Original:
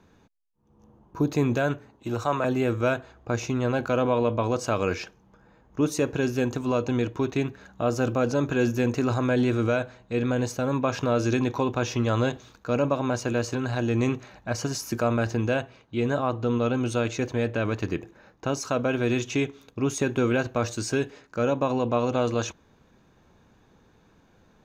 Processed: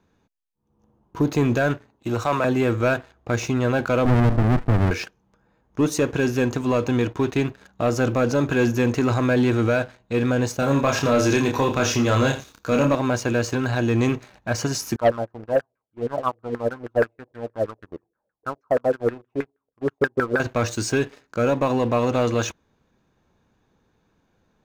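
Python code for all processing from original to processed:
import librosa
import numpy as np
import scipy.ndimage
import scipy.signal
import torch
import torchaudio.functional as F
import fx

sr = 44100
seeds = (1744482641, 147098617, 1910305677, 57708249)

y = fx.chain(x, sr, fx.lowpass_res(hz=630.0, q=2.7),
    fx.running_max(window=65), at=(4.05, 4.91))
y = fx.chain(y, sr, fx.high_shelf(hz=6400.0, db=11.0),
    fx.doubler(ms=29.0, db=-4.5),
    fx.echo_single(ms=83, db=-13.5), at=(10.59, 12.95))
y = fx.chain(y, sr, fx.filter_lfo_lowpass(shape='saw_down', hz=6.3, low_hz=440.0, high_hz=1700.0, q=5.6),
    fx.upward_expand(threshold_db=-28.0, expansion=2.5), at=(14.96, 20.4))
y = fx.dynamic_eq(y, sr, hz=1800.0, q=1.9, threshold_db=-43.0, ratio=4.0, max_db=3)
y = fx.leveller(y, sr, passes=2)
y = y * 10.0 ** (-3.0 / 20.0)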